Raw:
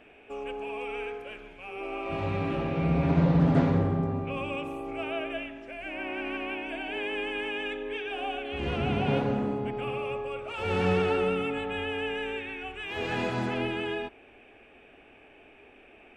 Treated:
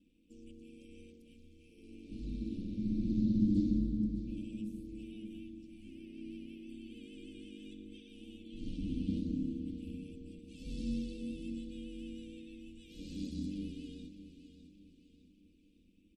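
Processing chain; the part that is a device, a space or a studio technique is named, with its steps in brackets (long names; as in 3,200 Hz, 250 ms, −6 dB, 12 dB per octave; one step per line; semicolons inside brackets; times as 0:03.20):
Chebyshev band-stop filter 260–4,300 Hz, order 3
ring-modulated robot voice (ring modulation 48 Hz; comb filter 3.8 ms, depth 81%)
repeating echo 607 ms, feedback 43%, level −12 dB
level −4.5 dB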